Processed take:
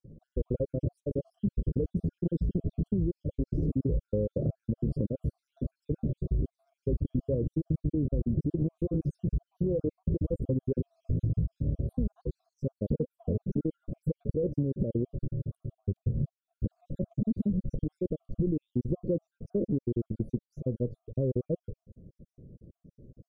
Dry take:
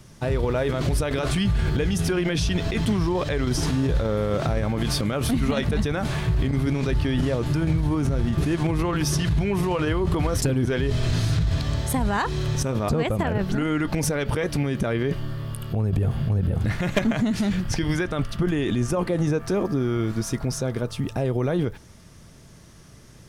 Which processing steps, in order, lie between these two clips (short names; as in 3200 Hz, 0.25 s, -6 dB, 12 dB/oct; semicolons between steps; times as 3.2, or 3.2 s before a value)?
random spectral dropouts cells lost 59%; elliptic low-pass 540 Hz, stop band 40 dB; compressor, threshold -24 dBFS, peak gain reduction 6 dB